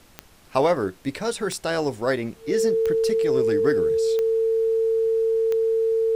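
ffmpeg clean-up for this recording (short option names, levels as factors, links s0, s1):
-af "adeclick=t=4,bandreject=f=450:w=30,agate=range=0.0891:threshold=0.00708"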